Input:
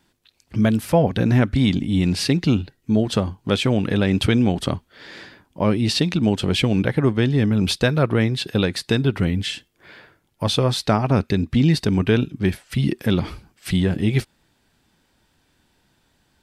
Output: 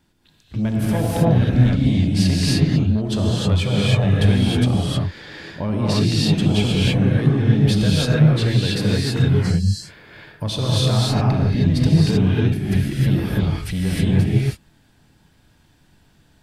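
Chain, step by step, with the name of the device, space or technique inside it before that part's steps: 3.59–4.03 s: comb 1.7 ms, depth 87%; 9.29–9.58 s: spectral replace 230–4000 Hz after; bass shelf 200 Hz +8.5 dB; soft clipper into limiter (saturation -7.5 dBFS, distortion -18 dB; peak limiter -15 dBFS, peak gain reduction 7 dB); gated-style reverb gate 340 ms rising, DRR -6 dB; trim -3 dB

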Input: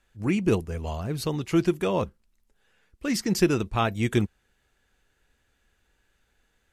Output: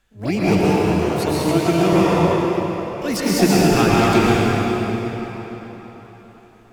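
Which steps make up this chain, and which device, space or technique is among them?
shimmer-style reverb (harmony voices +12 st -8 dB; reverberation RT60 4.3 s, pre-delay 103 ms, DRR -7.5 dB); 0.65–1.93 s: high-pass 160 Hz 6 dB/octave; trim +2 dB

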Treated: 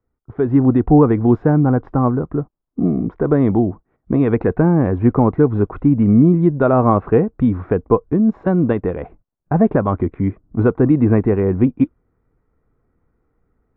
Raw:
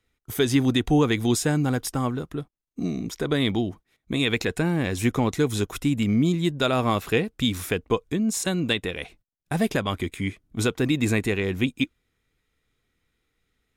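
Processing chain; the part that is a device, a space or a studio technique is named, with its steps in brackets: action camera in a waterproof case (low-pass 1.2 kHz 24 dB/octave; level rider gain up to 10 dB; trim +1 dB; AAC 96 kbps 24 kHz)

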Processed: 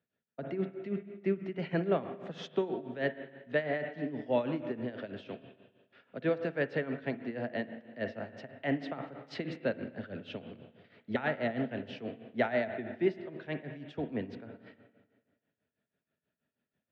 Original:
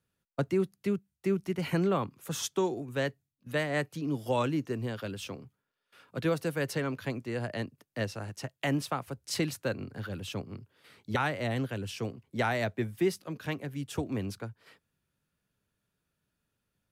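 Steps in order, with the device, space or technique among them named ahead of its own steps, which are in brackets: combo amplifier with spring reverb and tremolo (spring tank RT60 1.6 s, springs 40/52/58 ms, chirp 65 ms, DRR 8 dB; tremolo 6.2 Hz, depth 76%; cabinet simulation 110–3700 Hz, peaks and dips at 110 Hz -4 dB, 240 Hz +7 dB, 430 Hz +4 dB, 640 Hz +9 dB, 1.1 kHz -6 dB, 1.8 kHz +6 dB); trim -3 dB

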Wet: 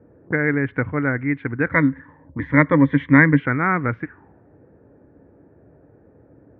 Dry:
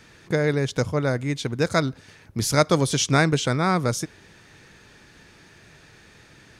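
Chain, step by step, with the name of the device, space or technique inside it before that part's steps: envelope filter bass rig (touch-sensitive low-pass 530–2000 Hz up, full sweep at -23.5 dBFS; cabinet simulation 64–2200 Hz, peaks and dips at 68 Hz +9 dB, 110 Hz +4 dB, 280 Hz +9 dB, 620 Hz -5 dB, 1.5 kHz +4 dB); 1.71–3.40 s: rippled EQ curve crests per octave 1.1, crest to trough 13 dB; trim -2 dB

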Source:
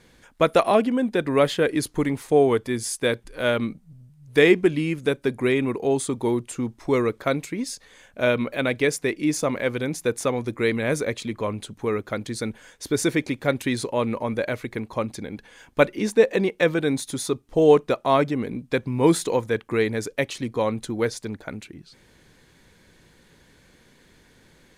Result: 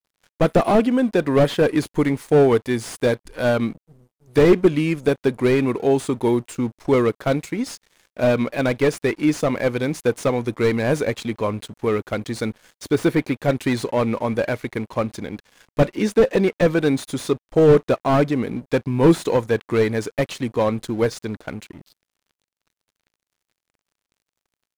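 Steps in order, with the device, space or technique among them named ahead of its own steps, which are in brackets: early transistor amplifier (crossover distortion -47.5 dBFS; slew-rate limiter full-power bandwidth 88 Hz); 12.94–13.42 s: peaking EQ 6.5 kHz -6.5 dB 1.1 oct; trim +4.5 dB

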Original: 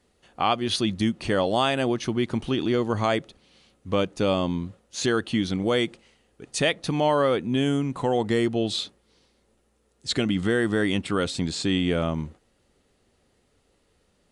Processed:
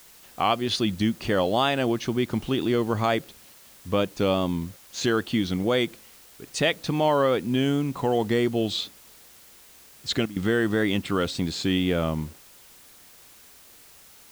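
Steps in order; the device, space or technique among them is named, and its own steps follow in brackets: worn cassette (low-pass 7.1 kHz; wow and flutter; level dips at 3.54/4.77/10.26 s, 103 ms -15 dB; white noise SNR 25 dB)

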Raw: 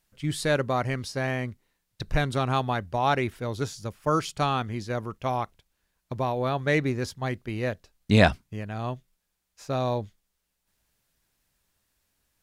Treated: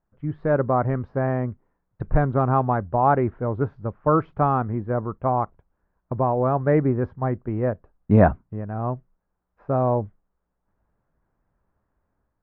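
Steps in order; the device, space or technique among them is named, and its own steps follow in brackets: 4.79–5.38 s: low-pass 3.1 kHz; action camera in a waterproof case (low-pass 1.3 kHz 24 dB/octave; level rider gain up to 6 dB; AAC 64 kbps 22.05 kHz)

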